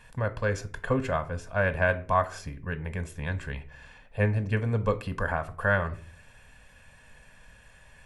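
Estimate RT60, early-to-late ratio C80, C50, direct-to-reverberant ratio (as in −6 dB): 0.40 s, 21.5 dB, 18.0 dB, 11.5 dB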